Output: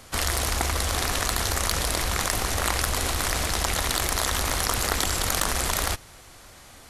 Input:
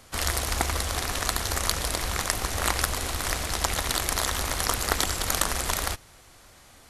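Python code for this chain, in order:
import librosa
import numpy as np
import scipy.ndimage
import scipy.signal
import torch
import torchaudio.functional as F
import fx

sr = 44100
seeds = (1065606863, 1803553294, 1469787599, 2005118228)

p1 = fx.over_compress(x, sr, threshold_db=-30.0, ratio=-1.0)
p2 = x + F.gain(torch.from_numpy(p1), -1.0).numpy()
p3 = 10.0 ** (-4.0 / 20.0) * np.tanh(p2 / 10.0 ** (-4.0 / 20.0))
y = F.gain(torch.from_numpy(p3), -2.0).numpy()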